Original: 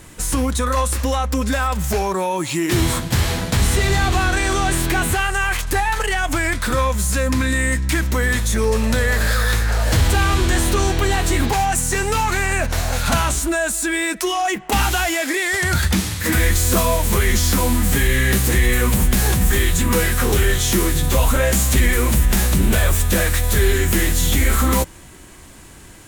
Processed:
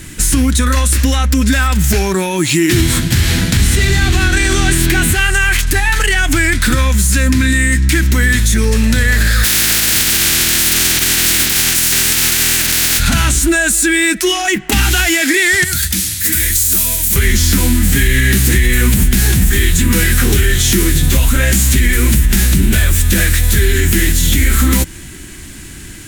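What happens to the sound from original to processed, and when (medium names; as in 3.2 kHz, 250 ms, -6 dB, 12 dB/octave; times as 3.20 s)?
9.43–12.98 s: spectral contrast reduction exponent 0.18
15.64–17.16 s: pre-emphasis filter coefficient 0.8
whole clip: high-order bell 730 Hz -11.5 dB; compression, threshold -18 dBFS; loudness maximiser +12 dB; trim -1 dB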